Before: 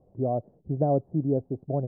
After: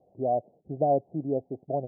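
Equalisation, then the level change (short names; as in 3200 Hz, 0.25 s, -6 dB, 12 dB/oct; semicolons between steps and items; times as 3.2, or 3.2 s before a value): band-pass 400 Hz, Q 0.51; synth low-pass 750 Hz, resonance Q 3.5; -5.0 dB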